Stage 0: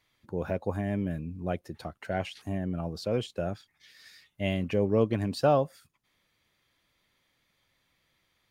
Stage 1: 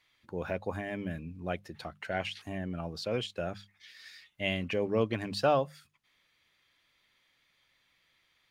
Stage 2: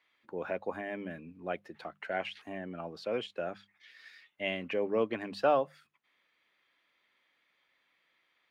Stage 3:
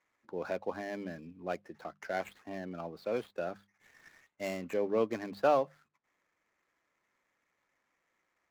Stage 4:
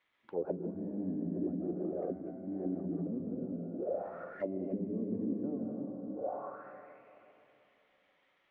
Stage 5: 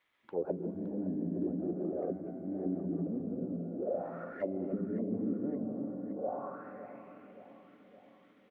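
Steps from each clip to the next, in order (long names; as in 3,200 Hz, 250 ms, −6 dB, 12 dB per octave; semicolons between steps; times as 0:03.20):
parametric band 2,600 Hz +9 dB 2.7 octaves; mains-hum notches 50/100/150/200 Hz; level −5 dB
three-way crossover with the lows and the highs turned down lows −20 dB, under 210 Hz, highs −12 dB, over 3,000 Hz
running median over 15 samples
downward compressor 3 to 1, threshold −34 dBFS, peak gain reduction 9 dB; dense smooth reverb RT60 3.3 s, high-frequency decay 0.7×, pre-delay 120 ms, DRR −3.5 dB; envelope-controlled low-pass 250–3,400 Hz down, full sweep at −32.5 dBFS; level −2.5 dB
repeating echo 566 ms, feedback 57%, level −14 dB; level +1 dB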